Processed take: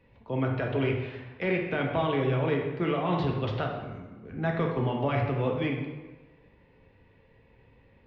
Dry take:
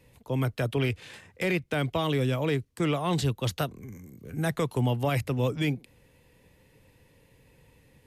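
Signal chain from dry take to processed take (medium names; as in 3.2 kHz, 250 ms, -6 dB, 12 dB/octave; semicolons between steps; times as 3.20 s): Gaussian low-pass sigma 2.8 samples; bass shelf 460 Hz -3.5 dB; reverberation RT60 1.3 s, pre-delay 3 ms, DRR 0 dB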